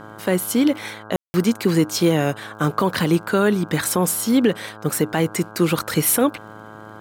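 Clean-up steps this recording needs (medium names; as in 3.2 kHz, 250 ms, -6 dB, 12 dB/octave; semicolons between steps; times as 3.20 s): de-click; de-hum 107.4 Hz, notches 15; room tone fill 1.16–1.34 s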